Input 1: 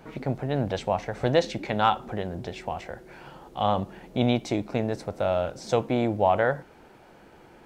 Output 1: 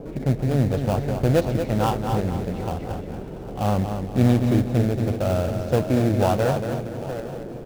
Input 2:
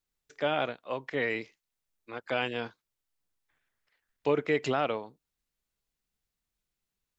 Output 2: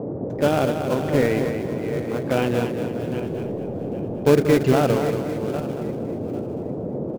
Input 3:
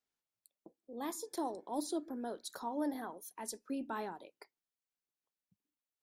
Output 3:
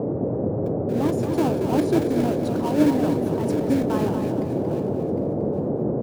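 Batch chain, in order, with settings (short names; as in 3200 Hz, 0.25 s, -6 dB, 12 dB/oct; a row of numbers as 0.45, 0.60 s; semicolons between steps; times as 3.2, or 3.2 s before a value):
regenerating reverse delay 0.4 s, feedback 49%, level -10 dB; tilt -3.5 dB/oct; gate with hold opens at -52 dBFS; in parallel at -7 dB: sample-rate reducer 2000 Hz, jitter 20%; on the sum: band noise 93–540 Hz -33 dBFS; on a send: feedback echo 0.231 s, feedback 38%, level -7.5 dB; on the sum: match loudness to -23 LUFS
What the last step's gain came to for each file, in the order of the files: -4.5, +4.0, +8.0 dB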